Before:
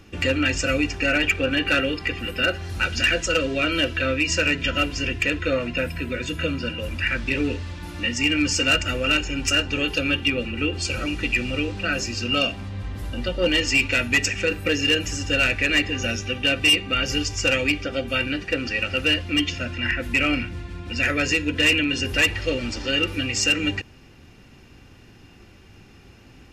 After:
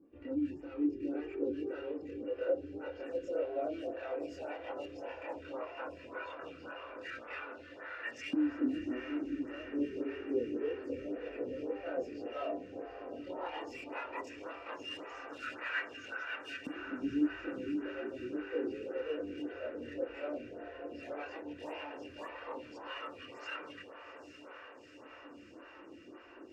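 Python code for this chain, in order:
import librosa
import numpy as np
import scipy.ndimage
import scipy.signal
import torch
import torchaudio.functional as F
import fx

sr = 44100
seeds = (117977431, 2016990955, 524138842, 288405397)

p1 = fx.high_shelf(x, sr, hz=7800.0, db=-7.5)
p2 = 10.0 ** (-23.0 / 20.0) * np.tanh(p1 / 10.0 ** (-23.0 / 20.0))
p3 = fx.chorus_voices(p2, sr, voices=4, hz=0.1, base_ms=26, depth_ms=1.8, mix_pct=60)
p4 = fx.filter_lfo_bandpass(p3, sr, shape='saw_up', hz=0.12, low_hz=270.0, high_hz=1700.0, q=5.2)
p5 = p4 + fx.echo_diffused(p4, sr, ms=828, feedback_pct=76, wet_db=-10, dry=0)
p6 = fx.stagger_phaser(p5, sr, hz=1.8)
y = p6 * librosa.db_to_amplitude(6.5)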